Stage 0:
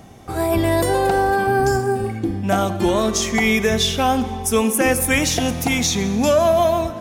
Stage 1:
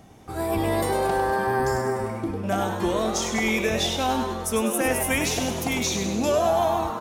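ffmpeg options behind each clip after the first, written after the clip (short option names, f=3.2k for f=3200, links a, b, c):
-filter_complex "[0:a]asplit=8[a][b][c][d][e][f][g][h];[b]adelay=100,afreqshift=130,volume=-7dB[i];[c]adelay=200,afreqshift=260,volume=-11.9dB[j];[d]adelay=300,afreqshift=390,volume=-16.8dB[k];[e]adelay=400,afreqshift=520,volume=-21.6dB[l];[f]adelay=500,afreqshift=650,volume=-26.5dB[m];[g]adelay=600,afreqshift=780,volume=-31.4dB[n];[h]adelay=700,afreqshift=910,volume=-36.3dB[o];[a][i][j][k][l][m][n][o]amix=inputs=8:normalize=0,volume=-7dB"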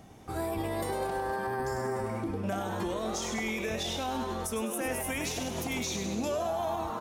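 -af "alimiter=limit=-21.5dB:level=0:latency=1:release=150,volume=-2.5dB"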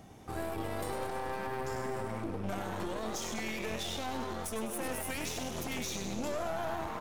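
-af "aeval=exprs='clip(val(0),-1,0.00794)':c=same,volume=-1dB"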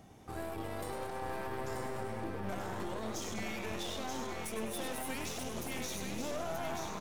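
-af "aecho=1:1:931:0.562,volume=-3.5dB"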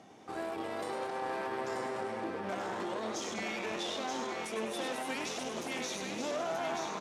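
-af "highpass=250,lowpass=6.7k,volume=4dB"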